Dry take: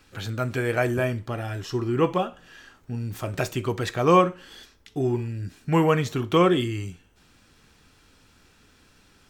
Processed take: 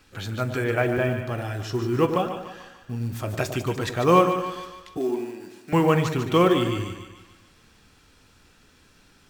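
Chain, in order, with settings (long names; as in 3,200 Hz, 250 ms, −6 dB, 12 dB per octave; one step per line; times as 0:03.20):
0:00.64–0:01.19: Butterworth low-pass 3,600 Hz 72 dB per octave
echo with a time of its own for lows and highs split 880 Hz, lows 102 ms, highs 147 ms, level −8 dB
floating-point word with a short mantissa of 4 bits
0:04.97–0:05.73: high-pass filter 250 Hz 24 dB per octave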